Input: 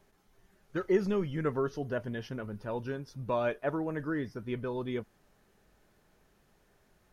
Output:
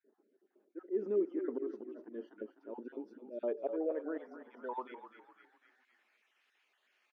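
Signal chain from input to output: random holes in the spectrogram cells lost 29%; in parallel at +1.5 dB: peak limiter -28.5 dBFS, peak gain reduction 12.5 dB; on the sum: slow attack 137 ms; on a send: frequency-shifting echo 252 ms, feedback 49%, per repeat -31 Hz, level -10 dB; on the sum: band-pass sweep 350 Hz -> 2.5 kHz, 3.29–6.25 s; brick-wall FIR high-pass 210 Hz; trim -1.5 dB

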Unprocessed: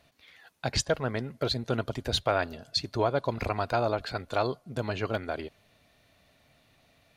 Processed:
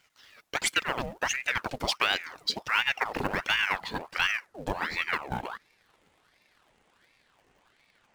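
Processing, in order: gliding tape speed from 121% -> 55%; in parallel at -9 dB: companded quantiser 4-bit; on the sum: ring modulator with a swept carrier 1.3 kHz, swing 75%, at 1.4 Hz

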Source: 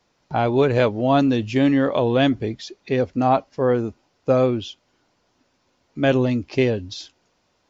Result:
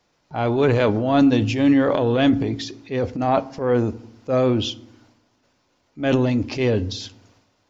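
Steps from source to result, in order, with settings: transient shaper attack -8 dB, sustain +8 dB; FDN reverb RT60 0.7 s, low-frequency decay 1.55×, high-frequency decay 0.55×, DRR 14.5 dB

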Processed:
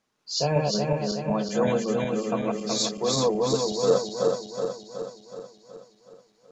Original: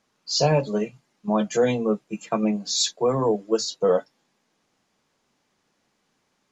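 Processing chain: backward echo that repeats 186 ms, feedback 74%, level -1.5 dB; trim -5.5 dB

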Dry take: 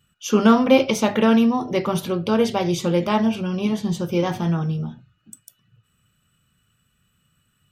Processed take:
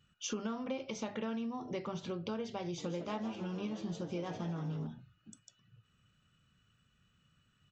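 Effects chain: compression 6:1, threshold -32 dBFS, peak gain reduction 21 dB; 2.62–4.87 s: frequency-shifting echo 157 ms, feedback 60%, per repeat +120 Hz, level -12 dB; resampled via 16 kHz; trim -5 dB

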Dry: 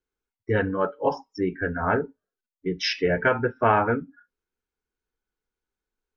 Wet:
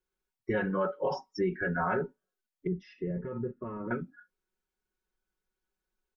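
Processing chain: comb 5.4 ms, depth 87%; peak limiter -18 dBFS, peak gain reduction 11 dB; 2.67–3.91 s: boxcar filter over 57 samples; trim -3 dB

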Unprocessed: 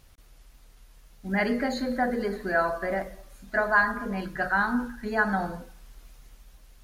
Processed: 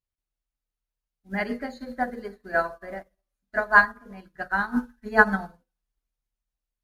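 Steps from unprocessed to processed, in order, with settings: 4.76–5.54 s: comb 4.6 ms, depth 54%; upward expansion 2.5:1, over -46 dBFS; trim +7 dB

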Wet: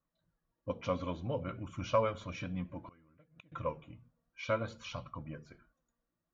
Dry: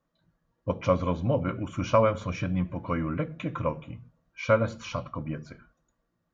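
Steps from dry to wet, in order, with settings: dynamic bell 3.6 kHz, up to +7 dB, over -50 dBFS, Q 1.5; flange 0.59 Hz, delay 0.7 ms, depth 3.7 ms, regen +53%; 2.85–3.52 s: inverted gate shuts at -33 dBFS, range -25 dB; trim -5.5 dB

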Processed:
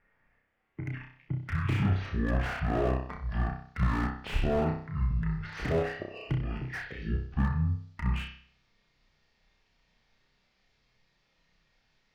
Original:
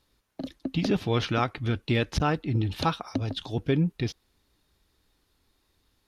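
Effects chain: speed mistake 15 ips tape played at 7.5 ips; low-pass sweep 1.7 kHz -> 4.2 kHz, 0.17–2.15 s; on a send: flutter echo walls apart 5.4 m, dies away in 0.51 s; on the sum: slew-rate limiter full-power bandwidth 53 Hz; trim -4 dB

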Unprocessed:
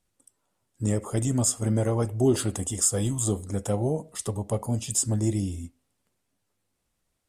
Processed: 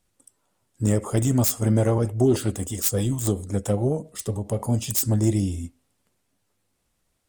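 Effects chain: self-modulated delay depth 0.078 ms; 1.98–4.60 s: rotary cabinet horn 7.5 Hz; trim +4.5 dB

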